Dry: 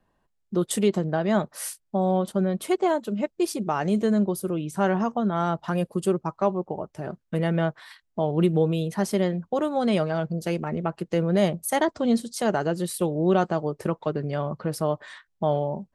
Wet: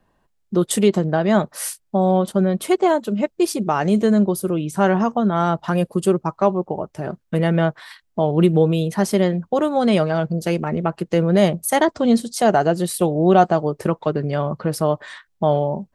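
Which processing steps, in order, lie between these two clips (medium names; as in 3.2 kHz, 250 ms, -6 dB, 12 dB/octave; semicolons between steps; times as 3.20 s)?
12.24–13.56 s: peaking EQ 710 Hz +7.5 dB 0.22 oct; trim +6 dB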